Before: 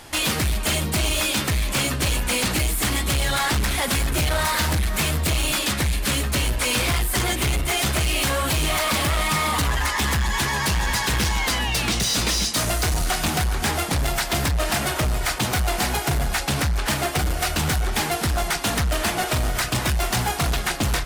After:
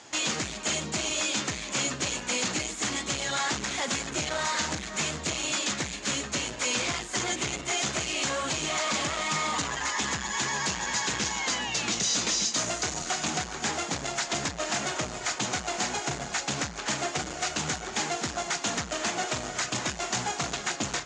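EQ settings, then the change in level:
high-pass filter 180 Hz 12 dB per octave
transistor ladder low-pass 7,300 Hz, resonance 75%
high-frequency loss of the air 81 metres
+6.0 dB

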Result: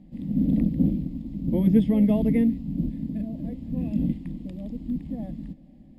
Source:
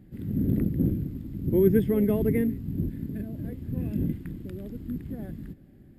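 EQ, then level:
dynamic equaliser 3,600 Hz, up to +4 dB, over −52 dBFS, Q 0.94
high-frequency loss of the air 85 metres
phaser with its sweep stopped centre 390 Hz, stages 6
+5.5 dB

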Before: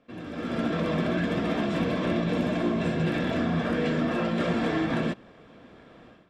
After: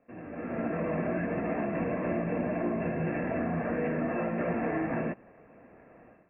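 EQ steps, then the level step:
Chebyshev low-pass with heavy ripple 2,700 Hz, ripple 6 dB
high-frequency loss of the air 170 metres
0.0 dB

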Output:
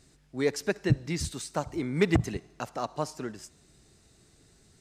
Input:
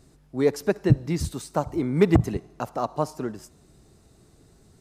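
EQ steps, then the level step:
flat-topped bell 3,700 Hz +8 dB 2.8 octaves
−6.0 dB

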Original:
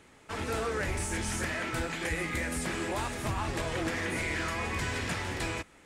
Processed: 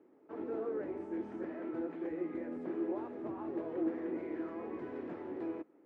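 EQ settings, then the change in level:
four-pole ladder band-pass 370 Hz, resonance 55%
+6.0 dB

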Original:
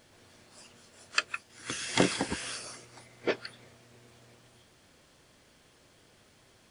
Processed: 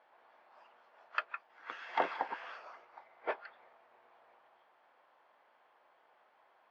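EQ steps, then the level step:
four-pole ladder band-pass 1,000 Hz, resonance 45%
high-frequency loss of the air 160 metres
+10.0 dB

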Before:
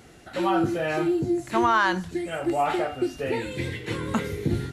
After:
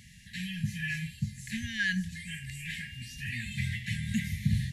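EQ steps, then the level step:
dynamic equaliser 4,100 Hz, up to −4 dB, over −43 dBFS, Q 1.2
linear-phase brick-wall band-stop 230–1,600 Hz
0.0 dB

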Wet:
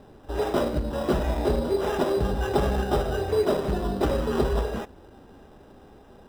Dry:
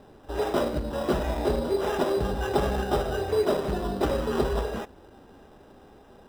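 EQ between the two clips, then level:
low-shelf EQ 250 Hz +4 dB
0.0 dB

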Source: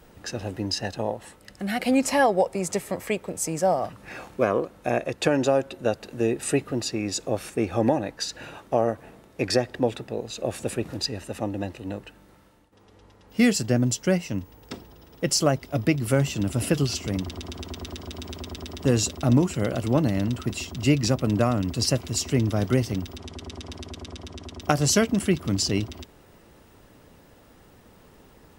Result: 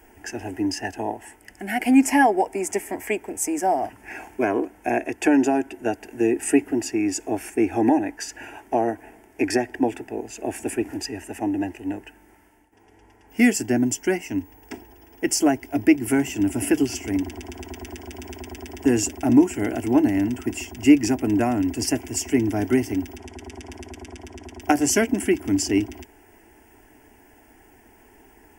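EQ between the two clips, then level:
low-shelf EQ 220 Hz −5 dB
dynamic equaliser 290 Hz, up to +7 dB, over −41 dBFS, Q 3.3
phaser with its sweep stopped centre 800 Hz, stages 8
+5.0 dB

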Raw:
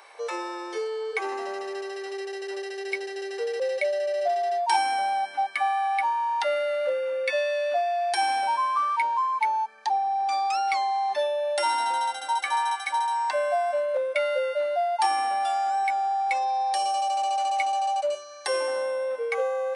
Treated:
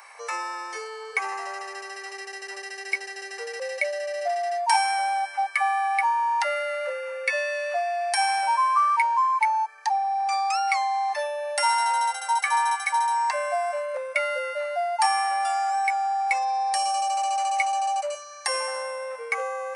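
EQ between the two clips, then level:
high-pass filter 1,100 Hz 12 dB per octave
parametric band 3,500 Hz −14 dB 0.59 octaves
notch filter 1,500 Hz, Q 12
+7.5 dB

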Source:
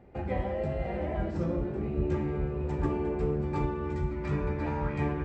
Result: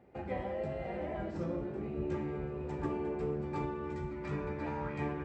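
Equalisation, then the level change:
high-pass filter 170 Hz 6 dB per octave
−4.0 dB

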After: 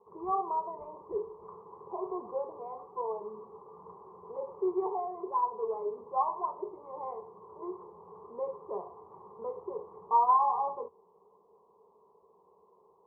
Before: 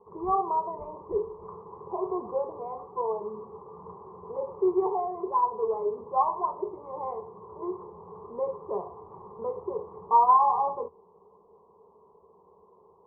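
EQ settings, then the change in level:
low-shelf EQ 150 Hz −11 dB
−4.5 dB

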